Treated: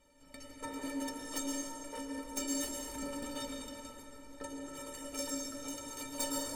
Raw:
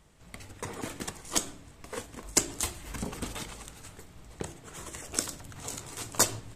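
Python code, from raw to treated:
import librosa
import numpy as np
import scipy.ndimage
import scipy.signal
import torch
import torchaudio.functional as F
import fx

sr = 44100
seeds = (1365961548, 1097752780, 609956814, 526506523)

y = fx.peak_eq(x, sr, hz=450.0, db=10.0, octaves=0.7)
y = fx.rev_plate(y, sr, seeds[0], rt60_s=2.7, hf_ratio=0.5, predelay_ms=100, drr_db=3.0)
y = fx.tube_stage(y, sr, drive_db=28.0, bias=0.25)
y = fx.stiff_resonator(y, sr, f0_hz=270.0, decay_s=0.27, stiffness=0.03)
y = y * 10.0 ** (10.0 / 20.0)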